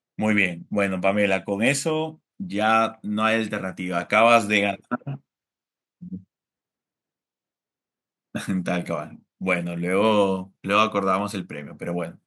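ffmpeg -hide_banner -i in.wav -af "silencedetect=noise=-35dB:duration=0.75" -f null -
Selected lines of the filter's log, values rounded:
silence_start: 5.16
silence_end: 6.03 | silence_duration: 0.87
silence_start: 6.17
silence_end: 8.35 | silence_duration: 2.17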